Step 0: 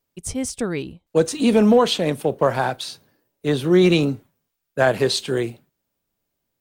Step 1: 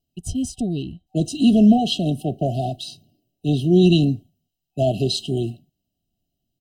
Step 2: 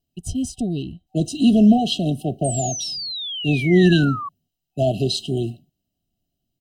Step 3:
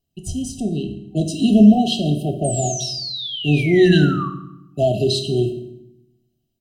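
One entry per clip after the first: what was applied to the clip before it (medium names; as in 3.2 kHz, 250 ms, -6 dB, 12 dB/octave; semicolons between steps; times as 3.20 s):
FFT band-reject 760–2600 Hz; treble shelf 4.3 kHz -10.5 dB; comb 1 ms, depth 98%
painted sound fall, 2.44–4.29 s, 1.1–8.7 kHz -29 dBFS
reverberation RT60 0.85 s, pre-delay 3 ms, DRR 5 dB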